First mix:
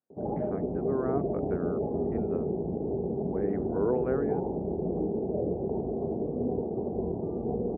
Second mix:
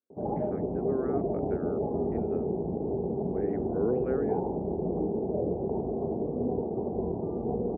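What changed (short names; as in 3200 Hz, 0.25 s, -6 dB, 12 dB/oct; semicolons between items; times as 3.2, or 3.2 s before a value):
speech: add fixed phaser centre 350 Hz, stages 4; master: add bell 1000 Hz +4.5 dB 0.78 oct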